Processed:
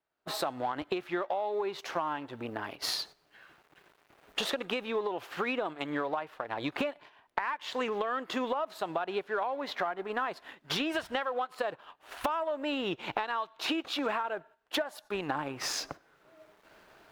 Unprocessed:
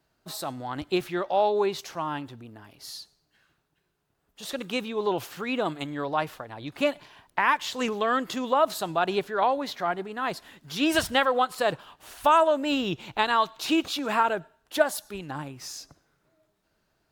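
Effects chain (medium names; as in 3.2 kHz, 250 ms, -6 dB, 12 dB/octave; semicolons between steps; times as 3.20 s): companding laws mixed up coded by A; recorder AGC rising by 16 dB/s; tone controls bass -13 dB, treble -15 dB; in parallel at -6.5 dB: saturation -18 dBFS, distortion -14 dB; on the sum: gate -45 dBFS, range -10 dB; compression 12:1, threshold -32 dBFS, peak gain reduction 19 dB; trim +3 dB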